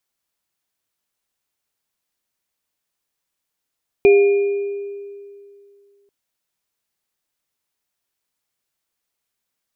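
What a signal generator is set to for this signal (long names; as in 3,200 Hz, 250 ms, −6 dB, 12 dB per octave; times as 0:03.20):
inharmonic partials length 2.04 s, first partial 402 Hz, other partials 705/2,420 Hz, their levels −20/−13 dB, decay 2.43 s, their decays 1.19/1.46 s, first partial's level −6.5 dB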